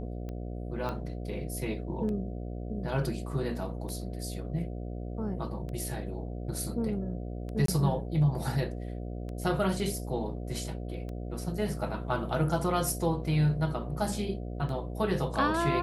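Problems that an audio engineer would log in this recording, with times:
mains buzz 60 Hz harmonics 12 −37 dBFS
scratch tick 33 1/3 rpm −28 dBFS
0:00.89: click −22 dBFS
0:07.66–0:07.68: drop-out 23 ms

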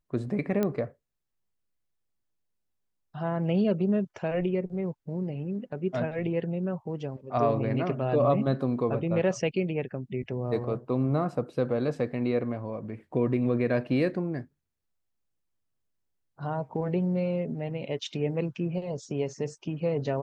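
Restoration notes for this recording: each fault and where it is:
0:00.63: click −15 dBFS

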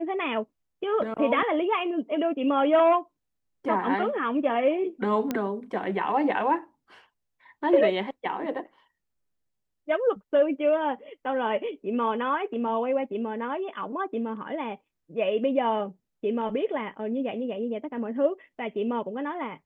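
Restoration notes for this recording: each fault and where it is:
0:05.31: click −14 dBFS

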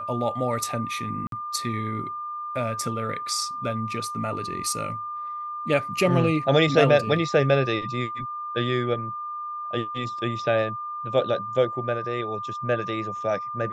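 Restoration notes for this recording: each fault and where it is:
whistle 1,200 Hz −30 dBFS
0:01.27–0:01.32: drop-out 52 ms

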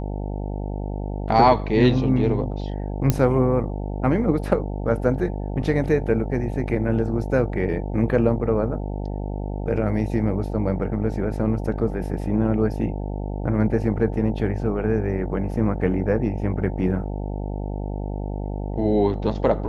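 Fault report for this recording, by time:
mains buzz 50 Hz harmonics 18 −28 dBFS
0:03.10: click −5 dBFS

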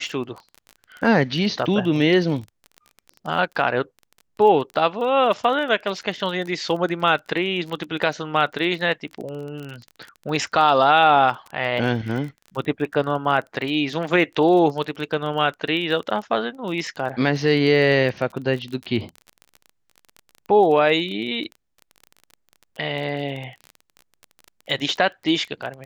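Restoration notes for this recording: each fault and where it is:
surface crackle 25 per second −29 dBFS

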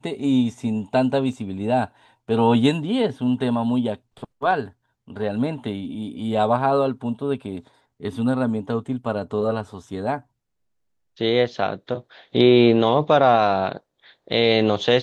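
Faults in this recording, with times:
0:01.33: drop-out 2.8 ms

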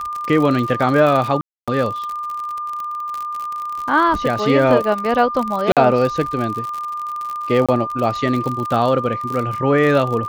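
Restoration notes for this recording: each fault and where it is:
surface crackle 52 per second −22 dBFS
whistle 1,200 Hz −23 dBFS
0:01.41–0:01.68: drop-out 266 ms
0:05.72–0:05.77: drop-out 47 ms
0:07.66–0:07.69: drop-out 26 ms

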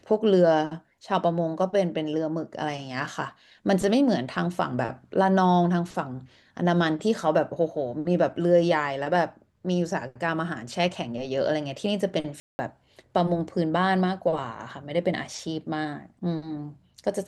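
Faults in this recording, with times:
0:12.40–0:12.59: drop-out 190 ms

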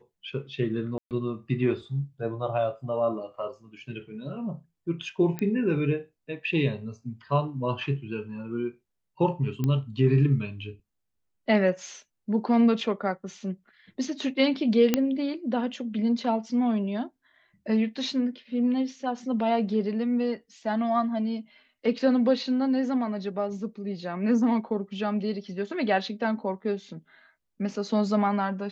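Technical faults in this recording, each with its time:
0:00.98–0:01.11: drop-out 128 ms
0:05.39: click −17 dBFS
0:09.64: click −16 dBFS
0:14.94: click −7 dBFS

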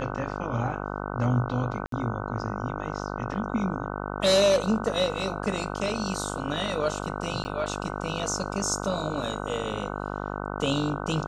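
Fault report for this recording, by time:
mains buzz 50 Hz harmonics 30 −33 dBFS
0:01.86–0:01.92: drop-out 63 ms
0:07.44–0:07.45: drop-out 10 ms

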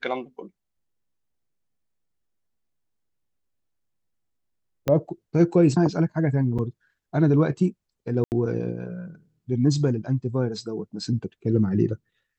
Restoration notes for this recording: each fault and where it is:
0:04.88: click −11 dBFS
0:06.58–0:06.59: drop-out 7 ms
0:08.24–0:08.32: drop-out 79 ms

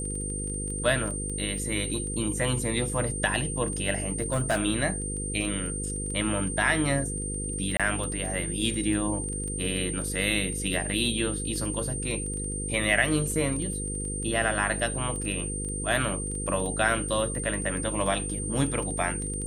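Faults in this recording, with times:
mains buzz 50 Hz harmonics 10 −34 dBFS
surface crackle 10 per second −32 dBFS
whistle 8,800 Hz −33 dBFS
0:04.06–0:04.60: clipping −20.5 dBFS
0:07.77–0:07.80: drop-out 26 ms

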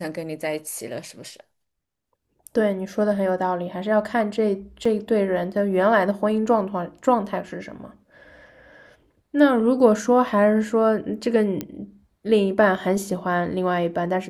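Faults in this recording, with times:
0:04.85: drop-out 4.3 ms
0:11.61: click −13 dBFS

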